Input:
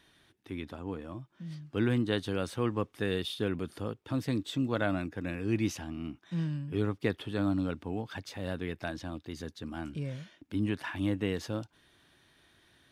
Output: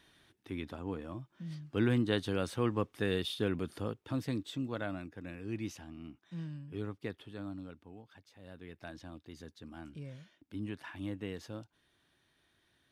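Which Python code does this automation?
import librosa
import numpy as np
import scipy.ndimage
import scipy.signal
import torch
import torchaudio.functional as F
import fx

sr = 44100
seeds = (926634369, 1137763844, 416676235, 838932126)

y = fx.gain(x, sr, db=fx.line((3.86, -1.0), (4.98, -9.0), (6.92, -9.0), (8.28, -19.0), (8.94, -9.0)))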